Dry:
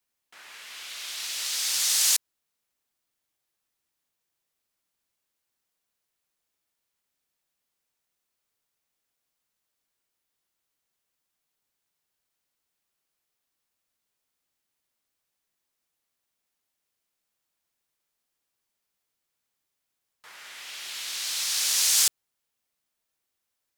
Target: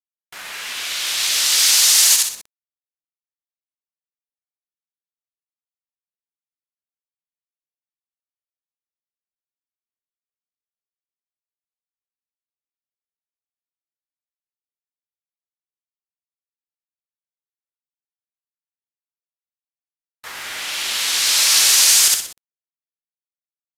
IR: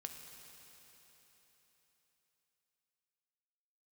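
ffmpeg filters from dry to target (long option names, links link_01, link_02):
-filter_complex "[0:a]asplit=2[link_01][link_02];[link_02]asoftclip=type=tanh:threshold=-25.5dB,volume=-10dB[link_03];[link_01][link_03]amix=inputs=2:normalize=0,aecho=1:1:62|124|186|248|310:0.501|0.195|0.0762|0.0297|0.0116,acrusher=bits=7:mix=0:aa=0.000001,alimiter=level_in=13dB:limit=-1dB:release=50:level=0:latency=1,volume=-2dB" -ar 32000 -c:a aac -b:a 64k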